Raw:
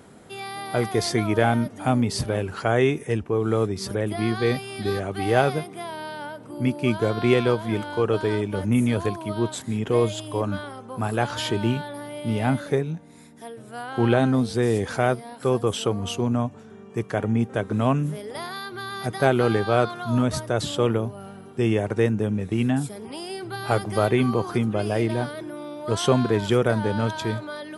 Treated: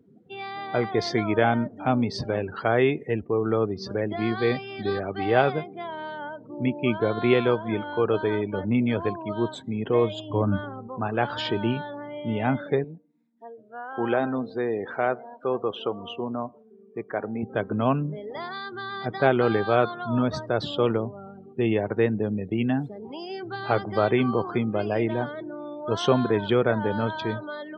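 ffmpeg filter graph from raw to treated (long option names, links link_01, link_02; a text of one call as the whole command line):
ffmpeg -i in.wav -filter_complex "[0:a]asettb=1/sr,asplit=3[link_01][link_02][link_03];[link_01]atrim=end=10.304[link_04];[link_02]atrim=start=10.3:end=10.88,asetpts=PTS-STARTPTS,afade=type=in:duration=0.004:curve=qsin,afade=type=out:start_time=0.576:duration=0.004:curve=qsin,bass=frequency=250:gain=10,treble=frequency=4000:gain=-6,asoftclip=type=hard:threshold=-11.5dB[link_05];[link_03]atrim=start=10.876[link_06];[link_04][link_05]acrossfade=duration=0.004:curve1=hsin:curve2=qsin[link_07];[link_07][link_06]acrossfade=duration=0.004:curve1=qsin:curve2=hsin,asettb=1/sr,asplit=3[link_08][link_09][link_10];[link_08]atrim=end=12.844[link_11];[link_09]atrim=start=12.84:end=17.43,asetpts=PTS-STARTPTS,afade=type=in:duration=0.004:curve=qsin,afade=type=out:start_time=4.586:duration=0.004:curve=qsin,highpass=frequency=420:poles=1,highshelf=frequency=3700:gain=-10.5,aecho=1:1:114|228|342|456:0.0708|0.0411|0.0238|0.0138,atrim=end_sample=202419[link_12];[link_10]atrim=start=17.426[link_13];[link_11][link_12]acrossfade=duration=0.004:curve1=hsin:curve2=qsin[link_14];[link_14][link_13]acrossfade=duration=0.004:curve1=qsin:curve2=hsin,lowpass=4800,afftdn=noise_reduction=30:noise_floor=-39,highpass=frequency=170:poles=1" out.wav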